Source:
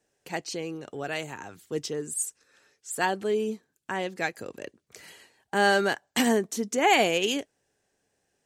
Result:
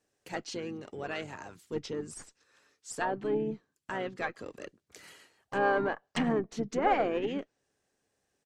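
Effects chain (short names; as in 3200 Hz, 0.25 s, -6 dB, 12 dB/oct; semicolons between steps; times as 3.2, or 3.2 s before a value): tube stage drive 13 dB, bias 0.75; treble ducked by the level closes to 1500 Hz, closed at -27.5 dBFS; harmoniser -7 st -10 dB, -5 st -12 dB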